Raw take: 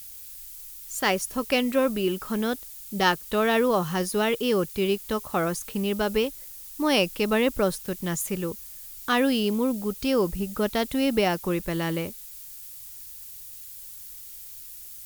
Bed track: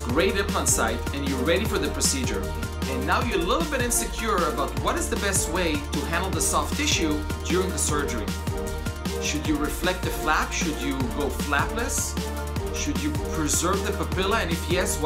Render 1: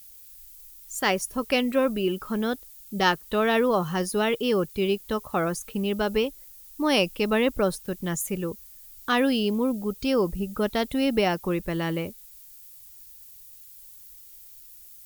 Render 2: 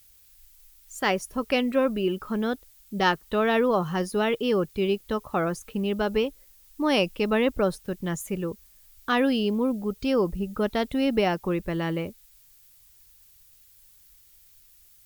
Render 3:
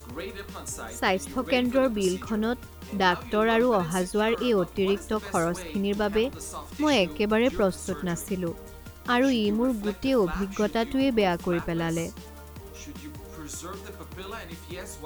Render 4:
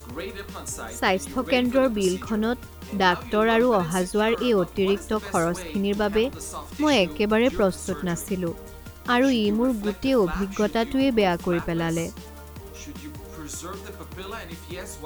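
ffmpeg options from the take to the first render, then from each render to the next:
-af "afftdn=nr=8:nf=-42"
-af "highshelf=f=5.2k:g=-9"
-filter_complex "[1:a]volume=-14.5dB[a];[0:a][a]amix=inputs=2:normalize=0"
-af "volume=2.5dB"

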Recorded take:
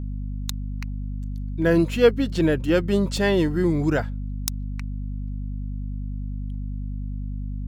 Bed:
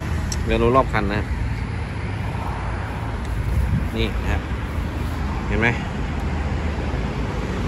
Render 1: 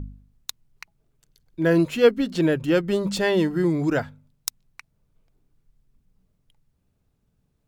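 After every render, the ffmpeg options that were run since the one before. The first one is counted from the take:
-af "bandreject=f=50:t=h:w=4,bandreject=f=100:t=h:w=4,bandreject=f=150:t=h:w=4,bandreject=f=200:t=h:w=4,bandreject=f=250:t=h:w=4"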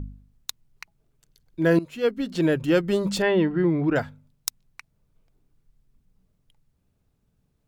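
-filter_complex "[0:a]asettb=1/sr,asplit=3[a][b][c];[a]atrim=end=3.224[d];[b]atrim=start=3.22:end=3.96,asetpts=PTS-STARTPTS,afade=t=in:d=0.004:c=qsin,afade=t=out:st=0.736:d=0.004:c=qsin,lowpass=f=3.1k:w=0.5412,lowpass=f=3.1k:w=1.3066[e];[c]atrim=start=3.956[f];[d][e]acrossfade=d=0.004:c1=hsin:c2=qsin[g];[g][f]acrossfade=d=0.004:c1=qsin:c2=hsin,asplit=2[h][i];[h]atrim=end=1.79,asetpts=PTS-STARTPTS,afade=t=out:st=1.786:d=0.004:c=hsin:silence=0.133352[j];[i]atrim=start=1.79,asetpts=PTS-STARTPTS,afade=t=in:d=0.76:silence=0.133352[k];[j][k]concat=n=2:v=0:a=1"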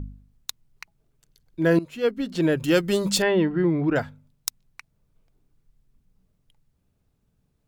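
-filter_complex "[0:a]asettb=1/sr,asplit=3[a][b][c];[a]atrim=end=2.574[d];[b]atrim=start=2.57:end=3.24,asetpts=PTS-STARTPTS,afade=t=in:d=0.004:c=qsin,afade=t=out:st=0.666:d=0.004:c=qsin,highshelf=f=3.3k:g=10.5[e];[c]atrim=start=3.236[f];[d][e]acrossfade=d=0.004:c1=hsin:c2=qsin[g];[g][f]acrossfade=d=0.004:c1=qsin:c2=hsin"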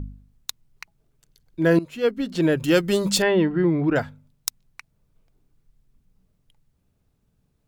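-af "volume=1.5dB"

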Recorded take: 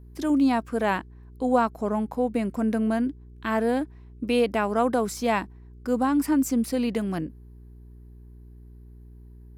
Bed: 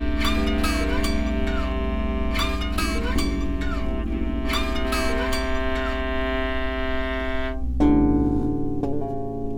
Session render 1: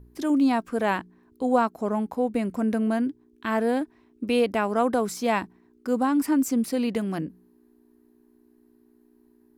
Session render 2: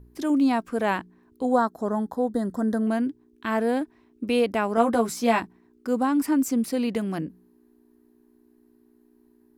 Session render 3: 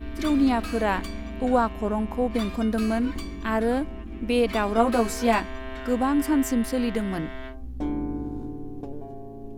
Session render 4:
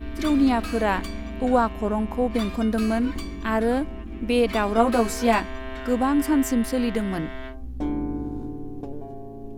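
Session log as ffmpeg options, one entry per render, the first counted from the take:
-af "bandreject=f=60:t=h:w=4,bandreject=f=120:t=h:w=4,bandreject=f=180:t=h:w=4"
-filter_complex "[0:a]asettb=1/sr,asplit=3[a][b][c];[a]atrim=end=1.454[d];[b]atrim=start=1.45:end=2.87,asetpts=PTS-STARTPTS,afade=t=in:d=0.004:c=qsin,afade=t=out:st=1.416:d=0.004:c=qsin,asuperstop=centerf=2500:order=12:qfactor=2[e];[c]atrim=start=2.866[f];[d][e]acrossfade=d=0.004:c1=hsin:c2=qsin[g];[g][f]acrossfade=d=0.004:c1=qsin:c2=hsin,asettb=1/sr,asplit=3[h][i][j];[h]atrim=end=4.764[k];[i]atrim=start=4.76:end=5.4,asetpts=PTS-STARTPTS,afade=t=in:d=0.004:c=qsin,afade=t=out:st=0.636:d=0.004:c=qsin,asplit=2[l][m];[m]adelay=13,volume=-3dB[n];[l][n]amix=inputs=2:normalize=0,atrim=end_sample=28224[o];[j]atrim=start=5.396[p];[k][o]acrossfade=d=0.004:c1=hsin:c2=qsin[q];[q][p]acrossfade=d=0.004:c1=qsin:c2=hsin"
-filter_complex "[1:a]volume=-11dB[a];[0:a][a]amix=inputs=2:normalize=0"
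-af "volume=1.5dB"

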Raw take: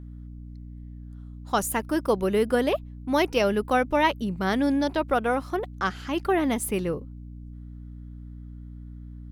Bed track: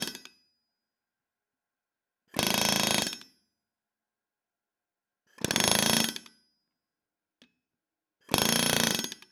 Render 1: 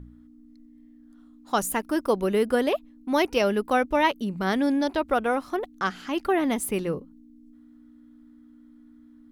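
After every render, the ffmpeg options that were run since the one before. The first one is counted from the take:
-af "bandreject=f=60:t=h:w=4,bandreject=f=120:t=h:w=4,bandreject=f=180:t=h:w=4"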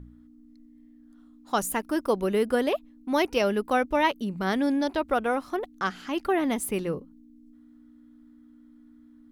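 -af "volume=-1.5dB"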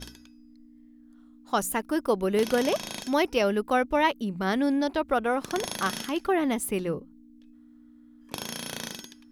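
-filter_complex "[1:a]volume=-10.5dB[a];[0:a][a]amix=inputs=2:normalize=0"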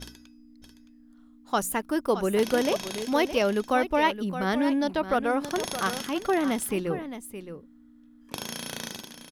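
-af "aecho=1:1:618:0.282"

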